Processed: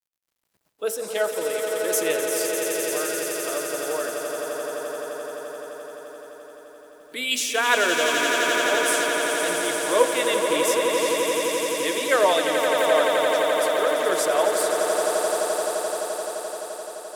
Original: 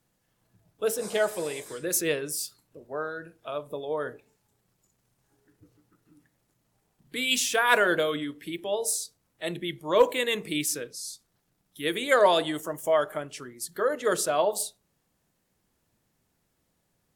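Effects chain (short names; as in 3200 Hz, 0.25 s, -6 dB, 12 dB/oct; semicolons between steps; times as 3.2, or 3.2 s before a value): HPF 290 Hz 12 dB/oct; bit-crush 11-bit; swelling echo 86 ms, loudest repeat 8, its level -8 dB; gain +1 dB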